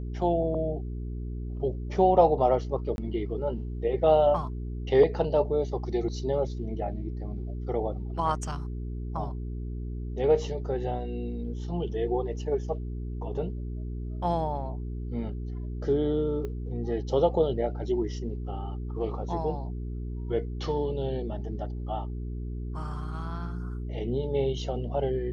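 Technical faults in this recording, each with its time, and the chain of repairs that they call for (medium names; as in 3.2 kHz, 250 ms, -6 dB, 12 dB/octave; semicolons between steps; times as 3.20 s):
hum 60 Hz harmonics 7 -34 dBFS
2.96–2.98 s: dropout 21 ms
16.45 s: pop -24 dBFS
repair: de-click; de-hum 60 Hz, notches 7; interpolate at 2.96 s, 21 ms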